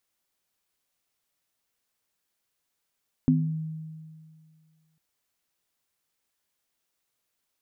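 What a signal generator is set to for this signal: sine partials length 1.70 s, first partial 158 Hz, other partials 255 Hz, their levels 5 dB, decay 2.08 s, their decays 0.42 s, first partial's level -20 dB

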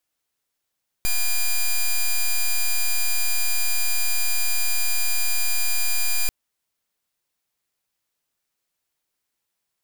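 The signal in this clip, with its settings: pulse 2.41 kHz, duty 7% -19.5 dBFS 5.24 s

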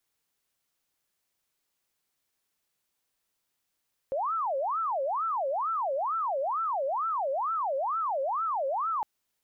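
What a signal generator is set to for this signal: siren wail 532–1340 Hz 2.2 per s sine -26.5 dBFS 4.91 s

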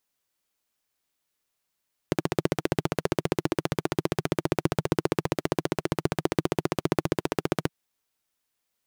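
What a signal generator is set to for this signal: single-cylinder engine model, steady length 5.57 s, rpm 1800, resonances 160/330 Hz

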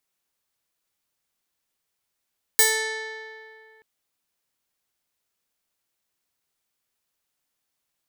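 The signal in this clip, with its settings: plucked string A4, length 1.23 s, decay 2.38 s, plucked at 0.35, bright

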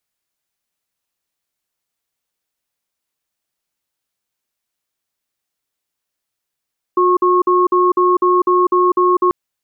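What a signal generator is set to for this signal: cadence 360 Hz, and 1.09 kHz, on 0.20 s, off 0.05 s, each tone -12.5 dBFS 2.34 s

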